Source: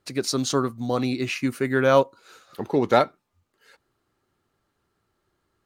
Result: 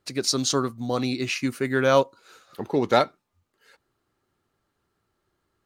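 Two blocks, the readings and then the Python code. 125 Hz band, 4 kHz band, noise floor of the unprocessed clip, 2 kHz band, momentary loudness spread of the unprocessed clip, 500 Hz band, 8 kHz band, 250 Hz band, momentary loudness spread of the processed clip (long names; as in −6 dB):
−1.5 dB, +3.5 dB, −75 dBFS, −0.5 dB, 8 LU, −1.5 dB, can't be measured, −1.5 dB, 8 LU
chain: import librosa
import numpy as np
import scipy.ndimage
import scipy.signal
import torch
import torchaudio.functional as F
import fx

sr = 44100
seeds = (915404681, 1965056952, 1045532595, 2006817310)

y = fx.dynamic_eq(x, sr, hz=5300.0, q=0.77, threshold_db=-42.0, ratio=4.0, max_db=6)
y = y * 10.0 ** (-1.5 / 20.0)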